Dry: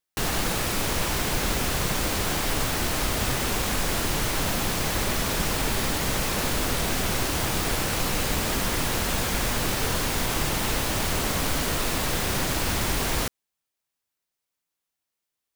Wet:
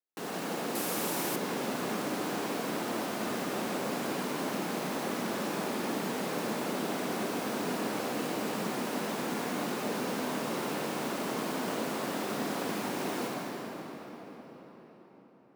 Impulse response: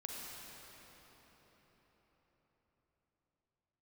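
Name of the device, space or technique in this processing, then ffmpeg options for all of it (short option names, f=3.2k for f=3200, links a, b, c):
cathedral: -filter_complex "[0:a]highpass=f=200:w=0.5412,highpass=f=200:w=1.3066,tiltshelf=f=1.3k:g=5.5[a];[1:a]atrim=start_sample=2205[b];[a][b]afir=irnorm=-1:irlink=0,asettb=1/sr,asplit=3[c][d][e];[c]atrim=end=0.754[f];[d]atrim=start=0.75:end=1.36,asetpts=PTS-STARTPTS,afade=t=in:d=0.004:c=qsin,afade=t=out:st=0.606:d=0.004:c=qsin,equalizer=f=13k:w=0.38:g=12[g];[e]atrim=start=1.356[h];[f][g]acrossfade=d=0.004:c1=hsin:c2=qsin[i];[i][h]acrossfade=d=0.004:c1=qsin:c2=hsin,volume=-6.5dB"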